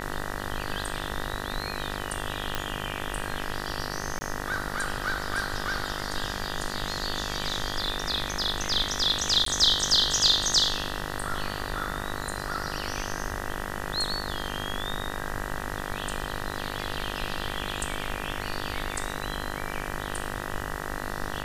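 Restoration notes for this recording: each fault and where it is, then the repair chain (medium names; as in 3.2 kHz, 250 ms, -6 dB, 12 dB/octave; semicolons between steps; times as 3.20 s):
buzz 50 Hz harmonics 39 -35 dBFS
2.55 s: pop -11 dBFS
4.19–4.21 s: dropout 20 ms
9.45–9.46 s: dropout 13 ms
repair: de-click; de-hum 50 Hz, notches 39; interpolate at 4.19 s, 20 ms; interpolate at 9.45 s, 13 ms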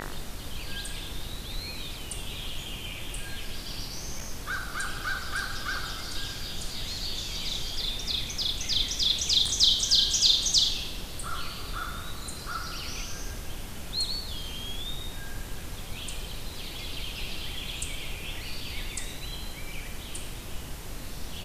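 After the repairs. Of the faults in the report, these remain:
nothing left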